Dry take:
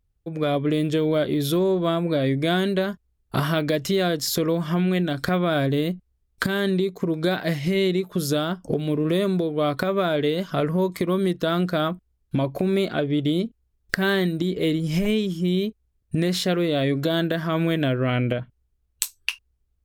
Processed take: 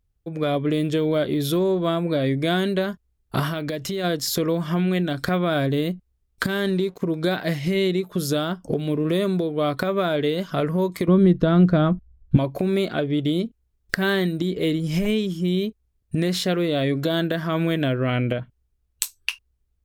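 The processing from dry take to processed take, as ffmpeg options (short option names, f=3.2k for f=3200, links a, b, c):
-filter_complex "[0:a]asplit=3[a][b][c];[a]afade=t=out:st=3.48:d=0.02[d];[b]acompressor=threshold=-25dB:ratio=3:attack=3.2:release=140:knee=1:detection=peak,afade=t=in:st=3.48:d=0.02,afade=t=out:st=4.03:d=0.02[e];[c]afade=t=in:st=4.03:d=0.02[f];[d][e][f]amix=inputs=3:normalize=0,asettb=1/sr,asplit=3[g][h][i];[g]atrim=end=6.454[j];[h]atrim=start=6.45:end=7.02,asetpts=PTS-STARTPTS,afade=t=in:d=0.004:c=qsin,afade=t=out:st=0.566:d=0.004:c=qsin,aeval=exprs='sgn(val(0))*max(abs(val(0))-0.00376,0)':c=same[k];[i]atrim=start=7.016[l];[j][k]acrossfade=d=0.004:c1=hsin:c2=qsin[m];[m][l]acrossfade=d=0.004:c1=qsin:c2=hsin,asettb=1/sr,asplit=3[n][o][p];[n]atrim=end=11.084[q];[o]atrim=start=11.08:end=12.37,asetpts=PTS-STARTPTS,afade=t=in:d=0.004:c=qsin,afade=t=out:st=1.286:d=0.004:c=qsin,aemphasis=mode=reproduction:type=riaa[r];[p]atrim=start=12.366[s];[q][r]acrossfade=d=0.004:c1=hsin:c2=qsin[t];[t][s]acrossfade=d=0.004:c1=qsin:c2=hsin"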